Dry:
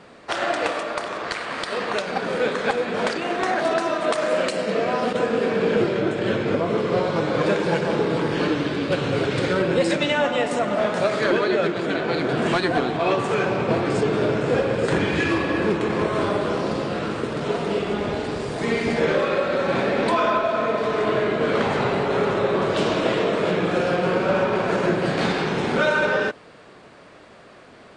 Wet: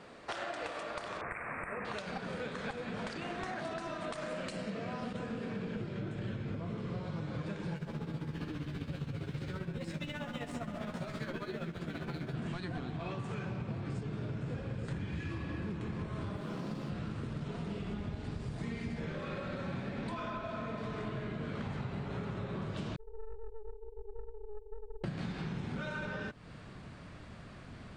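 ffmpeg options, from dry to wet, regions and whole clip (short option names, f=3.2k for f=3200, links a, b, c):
-filter_complex "[0:a]asettb=1/sr,asplit=3[a][b][c];[a]atrim=end=1.214[d];[b]atrim=start=1.21:end=1.85,asetpts=PTS-STARTPTS,afade=t=in:d=0.004:c=qsin,afade=t=out:st=0.636:d=0.004:c=qsin,asuperstop=centerf=4500:order=20:qfactor=0.87,highshelf=f=3.8k:t=q:w=1.5:g=-7[e];[c]atrim=start=1.846[f];[d][e]acrossfade=d=0.004:c1=hsin:c2=qsin[g];[g][f]acrossfade=d=0.004:c1=qsin:c2=hsin,asettb=1/sr,asplit=3[h][i][j];[h]atrim=end=7.764[k];[i]atrim=start=7.76:end=12.35,asetpts=PTS-STARTPTS,afade=t=in:d=0.004:c=qsin,afade=t=out:st=4.586:d=0.004:c=qsin,aeval=exprs='sgn(val(0))*max(abs(val(0))-0.01,0)':c=same,tremolo=f=15:d=0.68,asplit=2[l][m];[m]adelay=13,volume=-6.5dB[n];[l][n]amix=inputs=2:normalize=0,atrim=end_sample=202419[o];[j]atrim=start=12.346[p];[k][o]acrossfade=d=0.004:c1=hsin:c2=qsin[q];[q][p]acrossfade=d=0.004:c1=qsin:c2=hsin,asettb=1/sr,asplit=3[r][s][t];[r]atrim=end=16.364[u];[s]atrim=start=16.36:end=16.9,asetpts=PTS-STARTPTS,afade=t=in:d=0.004:c=qsin,afade=t=out:st=0.536:d=0.004:c=qsin,highpass=f=140:w=0.5412,highpass=f=140:w=1.3066,aeval=exprs='sgn(val(0))*max(abs(val(0))-0.00668,0)':c=same[v];[t]atrim=start=16.896[w];[u][v]acrossfade=d=0.004:c1=hsin:c2=qsin[x];[x][w]acrossfade=d=0.004:c1=qsin:c2=hsin,asettb=1/sr,asplit=3[y][z][aa];[y]atrim=end=22.964[ab];[z]atrim=start=22.96:end=25.04,asetpts=PTS-STARTPTS,afade=t=in:d=0.004:c=qsin,afade=t=out:st=2.076:d=0.004:c=qsin,asuperpass=centerf=430:order=20:qfactor=6.4,aecho=1:1:3.7:0.44,atrim=end_sample=91728,aeval=exprs='(tanh(20*val(0)+0.45)-tanh(0.45))/20':c=same[ac];[aa]atrim=start=25.036[ad];[ab][ac]acrossfade=d=0.004:c1=hsin:c2=qsin[ae];[ae][ad]acrossfade=d=0.004:c1=qsin:c2=hsin,asubboost=boost=8.5:cutoff=150,acompressor=threshold=-31dB:ratio=6,volume=-6dB"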